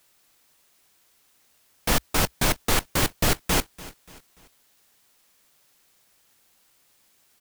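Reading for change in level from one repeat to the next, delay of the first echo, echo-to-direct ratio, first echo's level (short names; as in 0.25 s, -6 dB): -7.5 dB, 0.291 s, -18.0 dB, -19.0 dB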